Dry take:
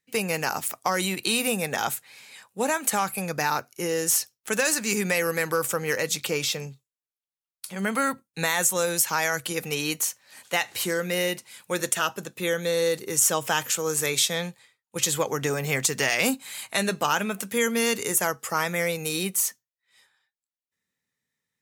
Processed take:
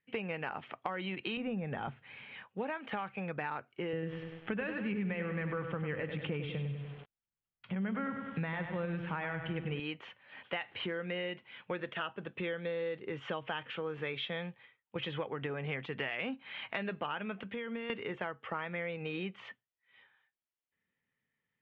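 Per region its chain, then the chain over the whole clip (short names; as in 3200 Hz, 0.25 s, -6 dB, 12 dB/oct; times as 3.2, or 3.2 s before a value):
1.37–2.44 de-esser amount 85% + tone controls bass +9 dB, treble -1 dB
3.93–9.8 tone controls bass +13 dB, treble -10 dB + notch 6700 Hz, Q 23 + lo-fi delay 98 ms, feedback 55%, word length 7-bit, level -7.5 dB
17.43–17.9 compressor, threshold -32 dBFS + three-band expander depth 70%
whole clip: Chebyshev low-pass 3200 Hz, order 5; compressor 4:1, threshold -36 dBFS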